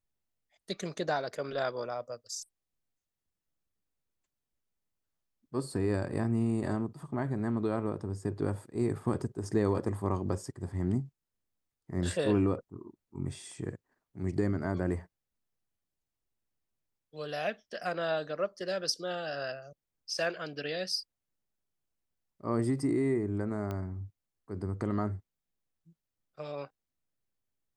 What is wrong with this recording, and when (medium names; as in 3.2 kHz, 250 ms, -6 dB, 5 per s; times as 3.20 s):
23.71 s: pop -24 dBFS